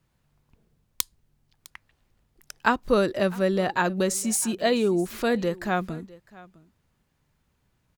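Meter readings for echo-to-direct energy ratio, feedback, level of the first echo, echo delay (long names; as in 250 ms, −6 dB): −21.5 dB, repeats not evenly spaced, −21.5 dB, 656 ms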